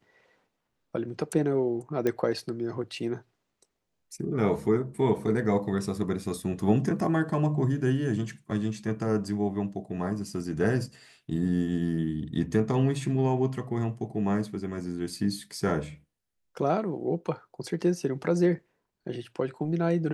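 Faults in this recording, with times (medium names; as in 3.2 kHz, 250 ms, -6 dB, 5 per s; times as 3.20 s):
2.07 s: pop -15 dBFS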